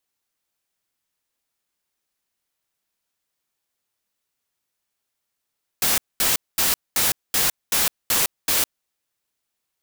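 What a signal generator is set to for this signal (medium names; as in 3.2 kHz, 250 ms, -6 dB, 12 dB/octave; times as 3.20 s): noise bursts white, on 0.16 s, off 0.22 s, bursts 8, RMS -19.5 dBFS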